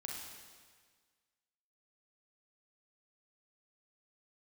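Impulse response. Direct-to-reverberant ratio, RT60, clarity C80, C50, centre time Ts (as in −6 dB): −2.0 dB, 1.6 s, 2.5 dB, 0.0 dB, 86 ms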